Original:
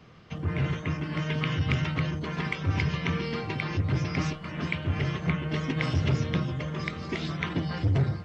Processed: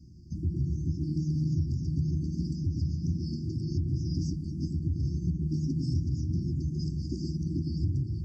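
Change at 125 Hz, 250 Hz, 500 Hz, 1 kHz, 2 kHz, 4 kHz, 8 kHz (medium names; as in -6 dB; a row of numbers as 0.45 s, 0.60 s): -1.0 dB, -1.0 dB, -11.0 dB, under -40 dB, under -40 dB, -12.5 dB, no reading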